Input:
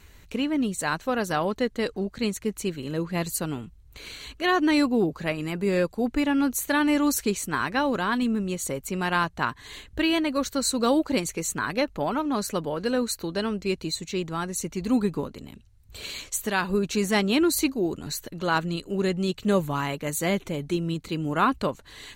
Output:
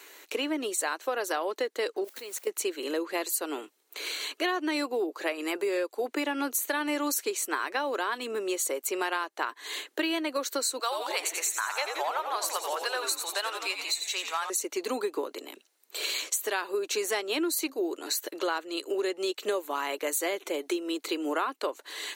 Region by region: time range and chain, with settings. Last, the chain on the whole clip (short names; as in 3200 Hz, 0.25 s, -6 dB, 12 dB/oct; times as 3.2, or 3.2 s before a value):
2.04–2.47 requantised 8-bit, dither triangular + level quantiser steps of 21 dB
10.79–14.5 HPF 710 Hz 24 dB/oct + frequency-shifting echo 87 ms, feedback 61%, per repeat -100 Hz, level -8 dB
whole clip: steep high-pass 320 Hz 48 dB/oct; high shelf 11000 Hz +6 dB; compressor 6:1, threshold -33 dBFS; gain +6 dB